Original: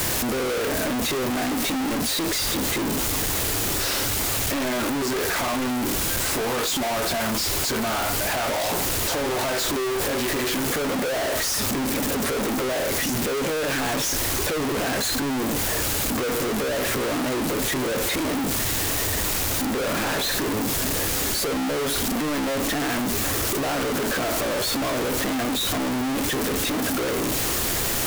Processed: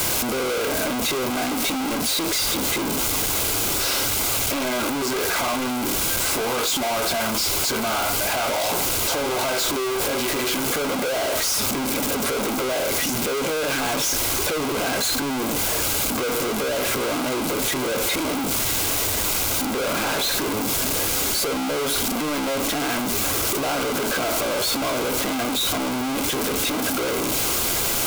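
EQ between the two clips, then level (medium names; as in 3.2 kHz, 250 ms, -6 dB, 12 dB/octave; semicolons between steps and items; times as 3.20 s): Butterworth band-stop 1.8 kHz, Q 7.5; bass shelf 290 Hz -6 dB; +2.5 dB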